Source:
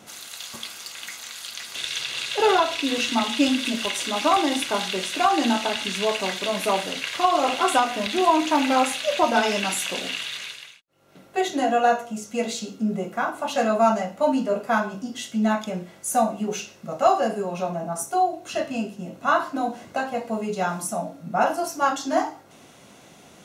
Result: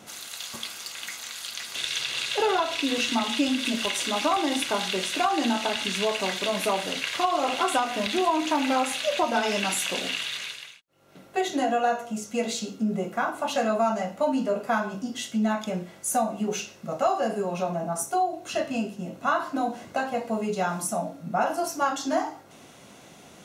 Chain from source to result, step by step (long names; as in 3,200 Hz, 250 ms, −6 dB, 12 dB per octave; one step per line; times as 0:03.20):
downward compressor 2.5 to 1, threshold −22 dBFS, peak gain reduction 7 dB